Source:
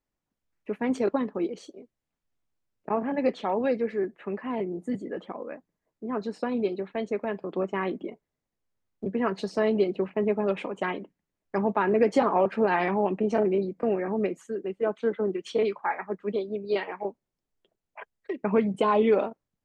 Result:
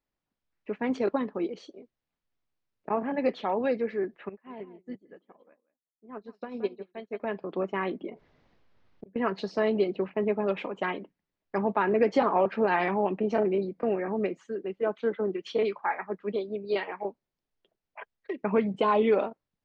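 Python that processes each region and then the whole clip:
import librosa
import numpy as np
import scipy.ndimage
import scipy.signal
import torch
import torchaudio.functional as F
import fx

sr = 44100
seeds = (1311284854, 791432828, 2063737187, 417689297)

y = fx.chain(x, sr, fx.echo_single(ms=174, db=-10.5),
    fx.upward_expand(threshold_db=-42.0, expansion=2.5), at=(4.29, 7.2))
y = fx.chain(y, sr, fx.gate_flip(shuts_db=-27.0, range_db=-35),
    fx.air_absorb(metres=150.0),
    fx.env_flatten(amount_pct=50), at=(8.09, 9.16))
y = scipy.signal.sosfilt(scipy.signal.butter(4, 5300.0, 'lowpass', fs=sr, output='sos'), y)
y = fx.low_shelf(y, sr, hz=470.0, db=-3.0)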